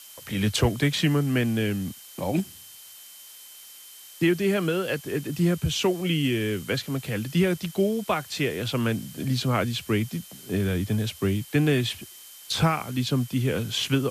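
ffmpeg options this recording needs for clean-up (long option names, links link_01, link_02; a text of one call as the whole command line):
ffmpeg -i in.wav -af "bandreject=frequency=3100:width=30,afftdn=noise_reduction=24:noise_floor=-46" out.wav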